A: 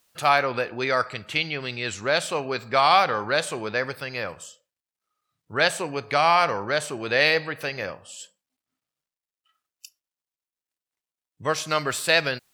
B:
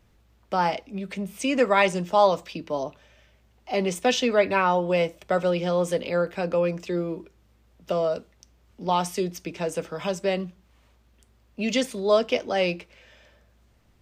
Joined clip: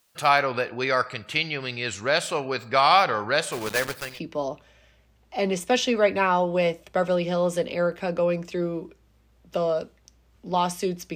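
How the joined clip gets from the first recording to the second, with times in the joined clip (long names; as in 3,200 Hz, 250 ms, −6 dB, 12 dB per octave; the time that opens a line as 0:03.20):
A
0:03.52–0:04.20: one scale factor per block 3 bits
0:04.11: continue with B from 0:02.46, crossfade 0.18 s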